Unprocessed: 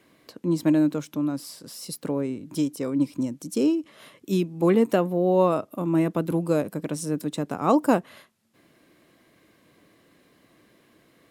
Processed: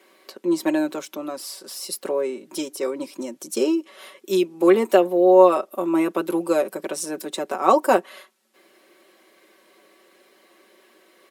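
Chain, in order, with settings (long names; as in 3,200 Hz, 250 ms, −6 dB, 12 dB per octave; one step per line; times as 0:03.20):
high-pass filter 320 Hz 24 dB per octave
comb filter 5.3 ms, depth 75%
level +4 dB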